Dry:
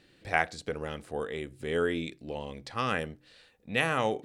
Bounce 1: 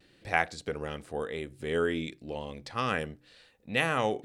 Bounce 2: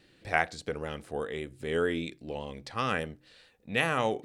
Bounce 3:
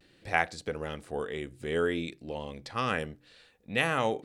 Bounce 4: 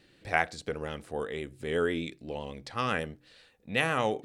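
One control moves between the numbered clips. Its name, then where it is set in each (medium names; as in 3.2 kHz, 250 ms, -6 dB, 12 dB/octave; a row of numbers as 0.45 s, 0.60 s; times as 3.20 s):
vibrato, rate: 0.89 Hz, 5 Hz, 0.54 Hz, 8 Hz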